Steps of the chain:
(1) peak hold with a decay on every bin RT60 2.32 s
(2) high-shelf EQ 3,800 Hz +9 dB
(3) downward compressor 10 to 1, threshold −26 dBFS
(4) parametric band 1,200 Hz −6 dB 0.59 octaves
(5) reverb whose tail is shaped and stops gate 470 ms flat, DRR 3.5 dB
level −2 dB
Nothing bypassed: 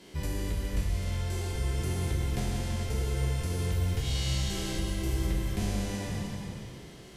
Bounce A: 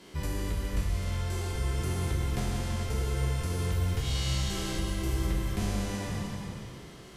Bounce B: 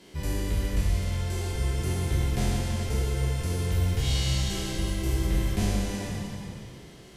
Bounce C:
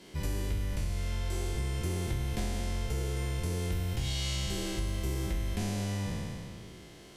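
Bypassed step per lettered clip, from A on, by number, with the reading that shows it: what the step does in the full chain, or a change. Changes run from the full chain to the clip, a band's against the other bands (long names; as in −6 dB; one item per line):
4, 1 kHz band +2.5 dB
3, average gain reduction 2.5 dB
5, change in momentary loudness spread −1 LU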